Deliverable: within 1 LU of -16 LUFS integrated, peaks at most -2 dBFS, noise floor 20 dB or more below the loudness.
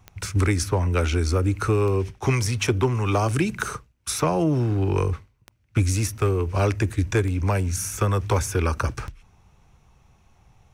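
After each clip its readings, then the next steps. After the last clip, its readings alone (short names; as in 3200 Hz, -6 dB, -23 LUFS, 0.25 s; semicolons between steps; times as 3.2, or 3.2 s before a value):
clicks 6; loudness -23.5 LUFS; peak -11.0 dBFS; loudness target -16.0 LUFS
-> de-click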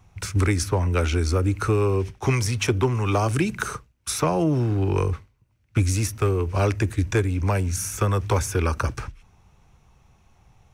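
clicks 0; loudness -23.5 LUFS; peak -11.0 dBFS; loudness target -16.0 LUFS
-> gain +7.5 dB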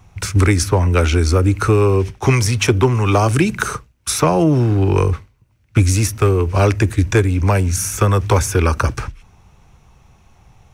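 loudness -16.0 LUFS; peak -3.5 dBFS; noise floor -54 dBFS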